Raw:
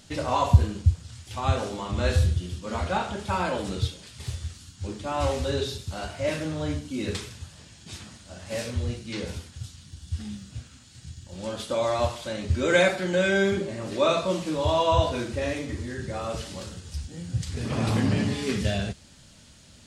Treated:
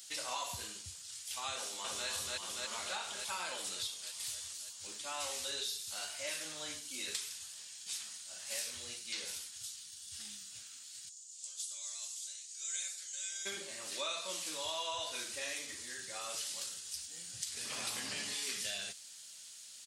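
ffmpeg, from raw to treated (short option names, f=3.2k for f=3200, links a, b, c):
-filter_complex "[0:a]asplit=2[a][b];[b]afade=t=in:st=1.55:d=0.01,afade=t=out:st=2.08:d=0.01,aecho=0:1:290|580|870|1160|1450|1740|2030|2320|2610|2900|3190|3480:0.944061|0.660843|0.46259|0.323813|0.226669|0.158668|0.111068|0.0777475|0.0544232|0.0380963|0.0266674|0.0186672[c];[a][c]amix=inputs=2:normalize=0,asplit=3[d][e][f];[d]afade=t=out:st=11.08:d=0.02[g];[e]bandpass=f=7.1k:t=q:w=2.3,afade=t=in:st=11.08:d=0.02,afade=t=out:st=13.45:d=0.02[h];[f]afade=t=in:st=13.45:d=0.02[i];[g][h][i]amix=inputs=3:normalize=0,aderivative,acompressor=threshold=-42dB:ratio=4,lowshelf=f=320:g=-3.5,volume=6dB"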